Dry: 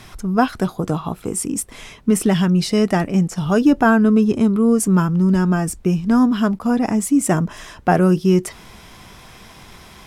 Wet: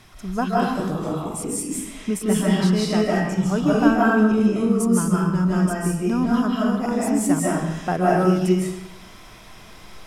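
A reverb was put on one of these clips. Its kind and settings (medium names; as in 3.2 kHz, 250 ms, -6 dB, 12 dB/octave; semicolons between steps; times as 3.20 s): algorithmic reverb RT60 0.9 s, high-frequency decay 0.9×, pre-delay 115 ms, DRR -5.5 dB; trim -8.5 dB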